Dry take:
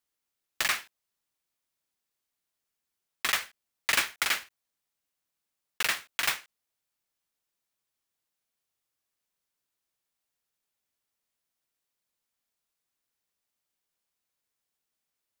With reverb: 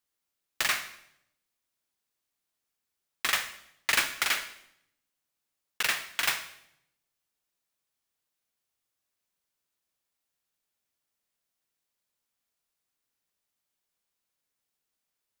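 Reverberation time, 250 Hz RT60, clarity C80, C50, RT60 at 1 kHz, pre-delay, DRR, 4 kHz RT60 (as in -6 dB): 0.75 s, 0.95 s, 14.0 dB, 11.5 dB, 0.70 s, 31 ms, 9.5 dB, 0.70 s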